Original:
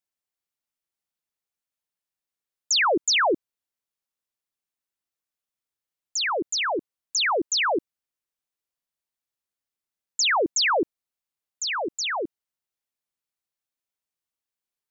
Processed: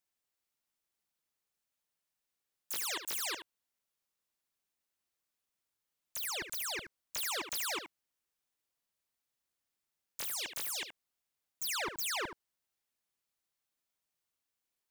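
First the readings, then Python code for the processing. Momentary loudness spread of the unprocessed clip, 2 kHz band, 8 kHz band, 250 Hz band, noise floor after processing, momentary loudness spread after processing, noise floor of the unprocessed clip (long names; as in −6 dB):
11 LU, −15.5 dB, can't be measured, −21.0 dB, below −85 dBFS, 8 LU, below −85 dBFS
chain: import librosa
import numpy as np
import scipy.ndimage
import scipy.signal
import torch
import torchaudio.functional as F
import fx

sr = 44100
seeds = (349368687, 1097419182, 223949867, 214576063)

p1 = 10.0 ** (-34.0 / 20.0) * (np.abs((x / 10.0 ** (-34.0 / 20.0) + 3.0) % 4.0 - 2.0) - 1.0)
p2 = p1 + fx.echo_single(p1, sr, ms=74, db=-10.0, dry=0)
y = F.gain(torch.from_numpy(p2), 1.5).numpy()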